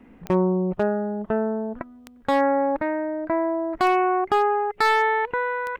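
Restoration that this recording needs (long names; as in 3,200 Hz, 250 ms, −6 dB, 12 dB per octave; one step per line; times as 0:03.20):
clipped peaks rebuilt −12 dBFS
click removal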